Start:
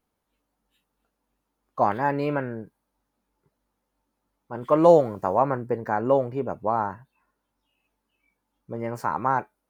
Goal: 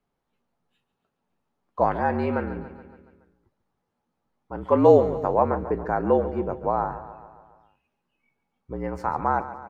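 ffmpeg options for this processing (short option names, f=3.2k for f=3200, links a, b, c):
-af "afreqshift=-49,aemphasis=mode=reproduction:type=50fm,aecho=1:1:141|282|423|564|705|846:0.211|0.125|0.0736|0.0434|0.0256|0.0151"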